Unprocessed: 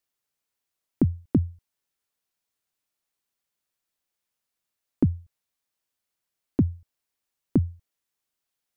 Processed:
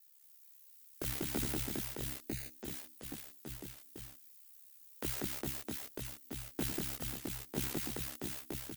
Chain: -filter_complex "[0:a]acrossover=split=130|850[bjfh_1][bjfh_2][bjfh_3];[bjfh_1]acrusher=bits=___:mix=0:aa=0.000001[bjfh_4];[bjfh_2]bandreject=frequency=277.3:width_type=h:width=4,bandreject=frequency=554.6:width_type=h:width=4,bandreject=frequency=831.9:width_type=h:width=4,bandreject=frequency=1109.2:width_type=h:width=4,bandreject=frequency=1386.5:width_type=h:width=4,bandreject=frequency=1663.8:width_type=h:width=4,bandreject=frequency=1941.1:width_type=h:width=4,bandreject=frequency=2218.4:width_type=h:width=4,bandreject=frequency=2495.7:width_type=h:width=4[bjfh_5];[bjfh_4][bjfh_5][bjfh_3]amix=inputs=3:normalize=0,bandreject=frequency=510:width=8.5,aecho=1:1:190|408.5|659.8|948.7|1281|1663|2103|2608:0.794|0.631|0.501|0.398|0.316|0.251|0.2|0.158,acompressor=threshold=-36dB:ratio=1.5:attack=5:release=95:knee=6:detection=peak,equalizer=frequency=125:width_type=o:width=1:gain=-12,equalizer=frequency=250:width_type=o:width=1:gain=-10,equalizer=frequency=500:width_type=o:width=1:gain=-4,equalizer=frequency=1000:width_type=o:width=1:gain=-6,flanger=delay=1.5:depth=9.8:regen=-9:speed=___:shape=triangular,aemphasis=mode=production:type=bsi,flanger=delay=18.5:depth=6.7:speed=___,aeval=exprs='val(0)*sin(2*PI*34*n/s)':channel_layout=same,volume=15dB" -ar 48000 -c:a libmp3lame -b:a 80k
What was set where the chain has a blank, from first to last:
6, 1, 0.36